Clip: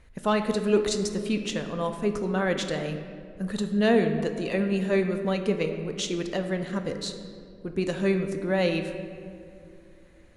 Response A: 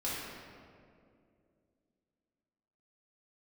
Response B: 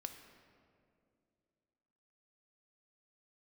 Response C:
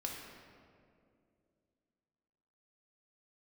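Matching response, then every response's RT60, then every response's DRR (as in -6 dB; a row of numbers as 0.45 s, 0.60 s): B; 2.4 s, 2.4 s, 2.4 s; -9.0 dB, 6.0 dB, -1.0 dB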